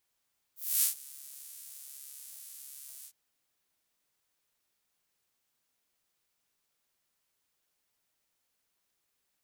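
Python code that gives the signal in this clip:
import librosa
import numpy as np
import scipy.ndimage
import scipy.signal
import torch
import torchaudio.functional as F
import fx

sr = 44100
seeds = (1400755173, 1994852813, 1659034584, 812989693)

y = fx.sub_patch_pwm(sr, seeds[0], note=49, wave2='saw', interval_st=0, detune_cents=16, level2_db=-9.0, sub_db=-15.0, noise_db=-29.5, kind='highpass', cutoff_hz=7900.0, q=1.1, env_oct=1.0, env_decay_s=0.27, env_sustain_pct=40, attack_ms=262.0, decay_s=0.12, sustain_db=-23, release_s=0.07, note_s=2.49, lfo_hz=1.2, width_pct=42, width_swing_pct=4)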